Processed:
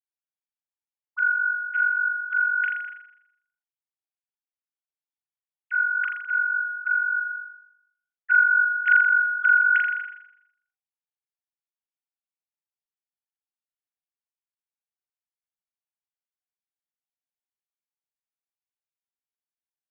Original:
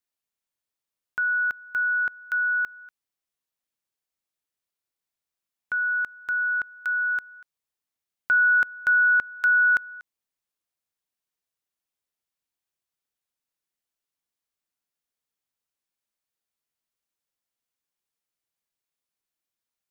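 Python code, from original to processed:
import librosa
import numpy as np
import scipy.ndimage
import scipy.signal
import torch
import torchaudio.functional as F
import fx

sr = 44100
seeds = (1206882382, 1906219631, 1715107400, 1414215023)

y = fx.sine_speech(x, sr)
y = fx.room_flutter(y, sr, wall_m=7.1, rt60_s=0.76)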